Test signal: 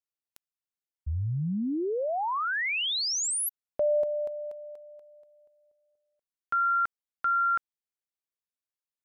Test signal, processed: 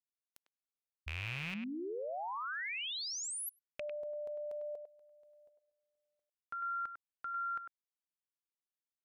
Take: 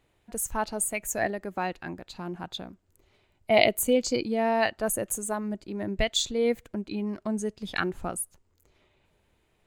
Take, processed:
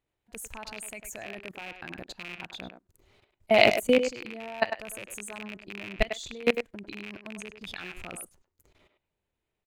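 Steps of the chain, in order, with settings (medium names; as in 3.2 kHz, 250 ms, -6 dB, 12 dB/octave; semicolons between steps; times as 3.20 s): rattle on loud lows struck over -39 dBFS, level -13 dBFS; level held to a coarse grid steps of 22 dB; speakerphone echo 100 ms, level -7 dB; trim +3.5 dB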